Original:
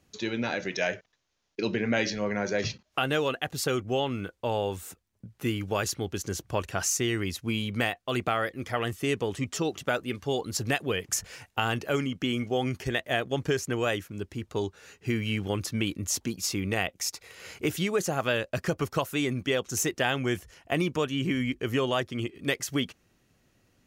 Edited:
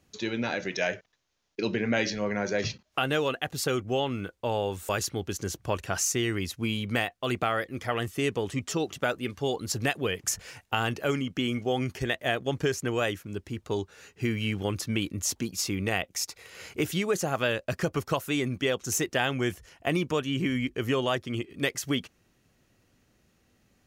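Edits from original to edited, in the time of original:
4.89–5.74 cut

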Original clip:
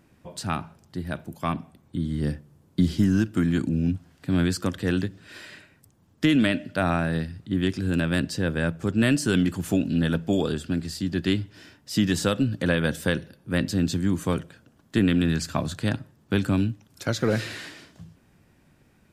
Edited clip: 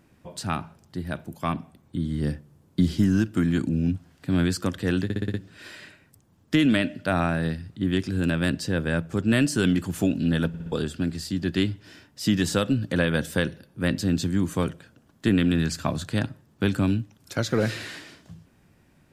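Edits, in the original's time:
5.04 stutter 0.06 s, 6 plays
10.18 stutter in place 0.06 s, 4 plays

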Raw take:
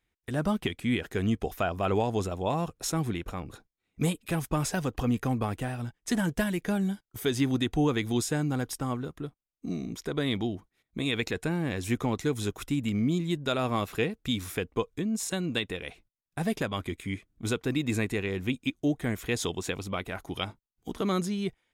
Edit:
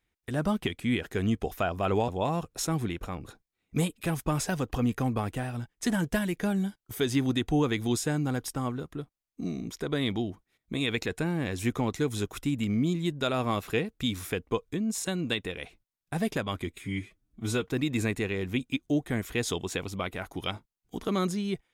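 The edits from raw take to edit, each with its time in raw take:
2.08–2.33 cut
16.95–17.58 stretch 1.5×

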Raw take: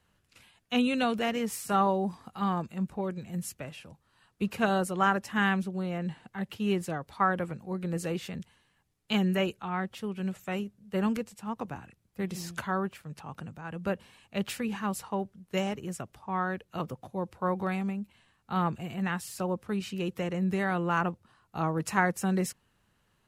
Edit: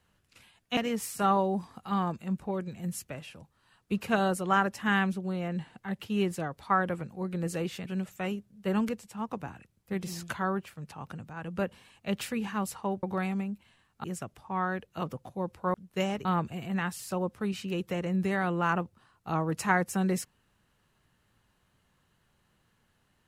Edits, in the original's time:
0.77–1.27 cut
8.36–10.14 cut
15.31–15.82 swap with 17.52–18.53

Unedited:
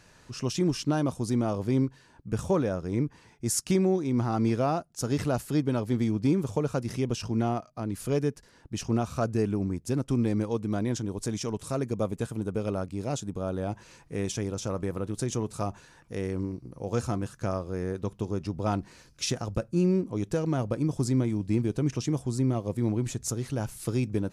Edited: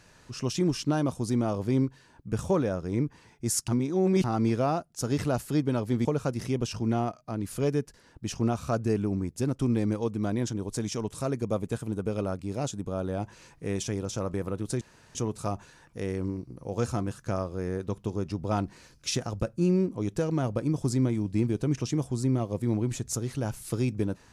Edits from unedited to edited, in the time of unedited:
3.68–4.24 reverse
6.05–6.54 cut
15.3 insert room tone 0.34 s

